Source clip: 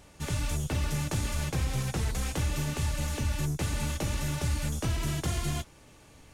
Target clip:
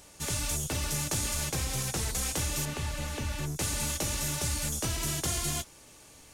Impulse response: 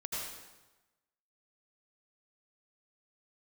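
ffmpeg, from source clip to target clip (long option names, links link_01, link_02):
-filter_complex "[0:a]asettb=1/sr,asplit=3[link_01][link_02][link_03];[link_01]atrim=end=2.654[link_04];[link_02]atrim=start=2.65:end=3.56,asetpts=PTS-STARTPTS,afade=type=in:duration=0.004:curve=qsin,afade=type=out:start_time=0.906:duration=0.004:curve=qsin,acrossover=split=3700[link_05][link_06];[link_06]acompressor=threshold=-52dB:ratio=4:attack=1:release=60[link_07];[link_05][link_07]amix=inputs=2:normalize=0[link_08];[link_03]atrim=start=3.556[link_09];[link_04][link_08]acrossfade=duration=0.004:curve1=hsin:curve2=qsin[link_10];[link_10][link_09]acrossfade=duration=0.004:curve1=qsin:curve2=hsin,bass=frequency=250:gain=-5,treble=frequency=4000:gain=9"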